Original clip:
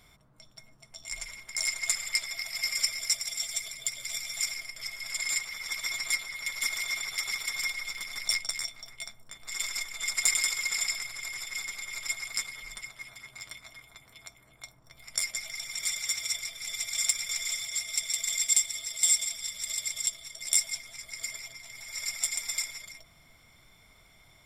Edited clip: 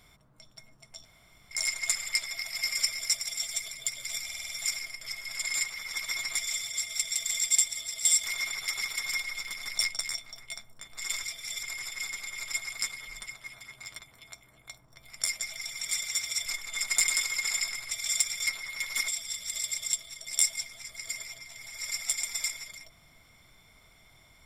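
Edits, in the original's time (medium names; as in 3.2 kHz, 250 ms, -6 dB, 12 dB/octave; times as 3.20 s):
1.05–1.51 s: room tone
4.24 s: stutter 0.05 s, 6 plays
6.13–6.74 s: swap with 17.36–19.22 s
9.73–11.18 s: swap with 16.40–16.80 s
13.54–13.93 s: delete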